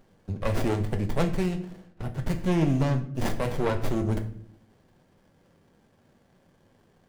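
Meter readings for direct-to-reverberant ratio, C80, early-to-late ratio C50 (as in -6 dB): 5.0 dB, 15.0 dB, 12.0 dB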